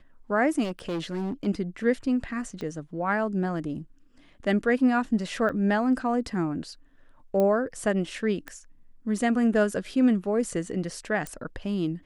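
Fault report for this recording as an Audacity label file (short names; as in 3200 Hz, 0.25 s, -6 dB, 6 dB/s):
0.630000	1.470000	clipped -26.5 dBFS
2.610000	2.610000	pop -23 dBFS
5.490000	5.500000	gap 7.5 ms
7.400000	7.400000	pop -15 dBFS
8.480000	8.480000	pop -22 dBFS
11.270000	11.270000	pop -20 dBFS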